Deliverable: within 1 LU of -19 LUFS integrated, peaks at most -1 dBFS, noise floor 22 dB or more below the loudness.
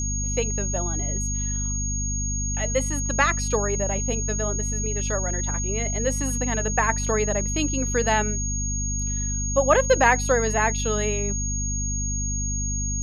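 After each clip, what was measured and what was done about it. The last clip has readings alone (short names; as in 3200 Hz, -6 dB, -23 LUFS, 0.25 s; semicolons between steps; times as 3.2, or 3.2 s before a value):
hum 50 Hz; harmonics up to 250 Hz; hum level -25 dBFS; steady tone 6600 Hz; tone level -28 dBFS; loudness -24.0 LUFS; peak -4.5 dBFS; loudness target -19.0 LUFS
-> notches 50/100/150/200/250 Hz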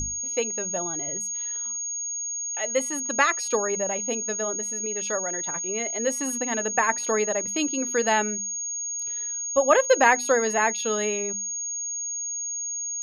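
hum none; steady tone 6600 Hz; tone level -28 dBFS
-> notch 6600 Hz, Q 30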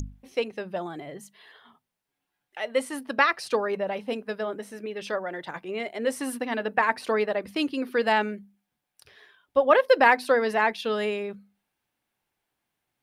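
steady tone none; loudness -26.0 LUFS; peak -5.5 dBFS; loudness target -19.0 LUFS
-> gain +7 dB; limiter -1 dBFS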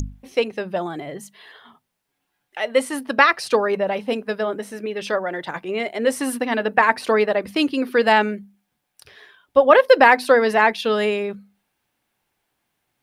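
loudness -19.5 LUFS; peak -1.0 dBFS; noise floor -76 dBFS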